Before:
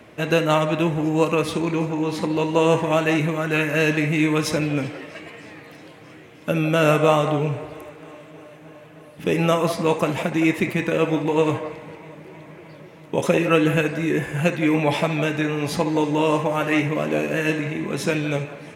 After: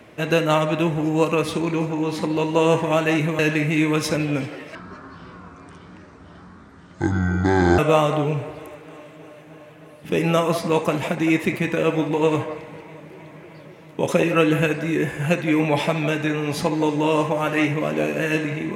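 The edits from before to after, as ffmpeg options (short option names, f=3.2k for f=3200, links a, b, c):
-filter_complex "[0:a]asplit=4[a][b][c][d];[a]atrim=end=3.392[e];[b]atrim=start=3.808:end=5.174[f];[c]atrim=start=5.17:end=6.93,asetpts=PTS-STARTPTS,asetrate=25578,aresample=44100[g];[d]atrim=start=6.926[h];[e][f]acrossfade=d=0.004:c1=hsin:c2=hsin[i];[i][g]acrossfade=d=0.004:c1=hsin:c2=hsin[j];[j][h]acrossfade=d=0.004:c1=hsin:c2=hsin"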